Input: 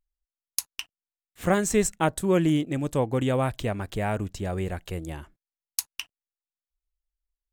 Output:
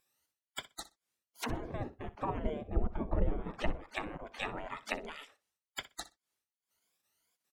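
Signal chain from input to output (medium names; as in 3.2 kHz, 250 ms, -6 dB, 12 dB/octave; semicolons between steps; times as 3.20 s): drifting ripple filter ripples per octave 1.8, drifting +2.3 Hz, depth 14 dB; spectral gate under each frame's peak -25 dB weak; 2.68–3.75 s: tilt EQ -2.5 dB/octave; low-pass that closes with the level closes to 390 Hz, closed at -41 dBFS; feedback delay 62 ms, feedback 15%, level -16.5 dB; trim +16 dB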